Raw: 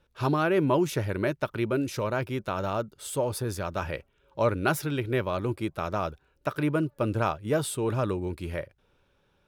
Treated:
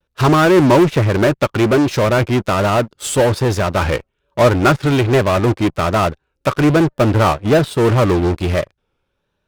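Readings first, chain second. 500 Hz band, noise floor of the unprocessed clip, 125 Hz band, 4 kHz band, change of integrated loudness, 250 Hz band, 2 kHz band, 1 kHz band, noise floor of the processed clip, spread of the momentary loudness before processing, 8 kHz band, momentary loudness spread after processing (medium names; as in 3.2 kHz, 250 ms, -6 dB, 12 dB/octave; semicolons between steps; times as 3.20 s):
+13.5 dB, -69 dBFS, +14.5 dB, +15.0 dB, +14.0 dB, +14.0 dB, +13.0 dB, +13.5 dB, -72 dBFS, 10 LU, +10.5 dB, 8 LU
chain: low-pass that closes with the level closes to 2.2 kHz, closed at -22 dBFS; vibrato 1.2 Hz 78 cents; in parallel at -8.5 dB: fuzz box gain 37 dB, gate -46 dBFS; on the sum: upward expansion 1.5:1, over -38 dBFS; trim +8 dB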